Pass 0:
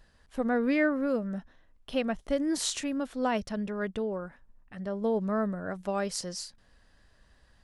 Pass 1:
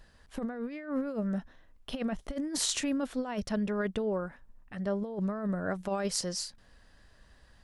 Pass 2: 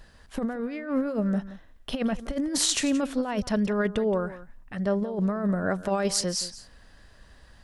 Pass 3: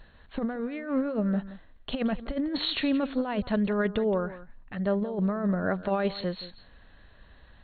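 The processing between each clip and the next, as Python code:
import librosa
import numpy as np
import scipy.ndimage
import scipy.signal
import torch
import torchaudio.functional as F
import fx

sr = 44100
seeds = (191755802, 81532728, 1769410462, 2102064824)

y1 = fx.over_compress(x, sr, threshold_db=-31.0, ratio=-0.5)
y2 = y1 + 10.0 ** (-16.0 / 20.0) * np.pad(y1, (int(174 * sr / 1000.0), 0))[:len(y1)]
y2 = y2 * 10.0 ** (6.0 / 20.0)
y3 = fx.brickwall_lowpass(y2, sr, high_hz=4400.0)
y3 = y3 * 10.0 ** (-1.0 / 20.0)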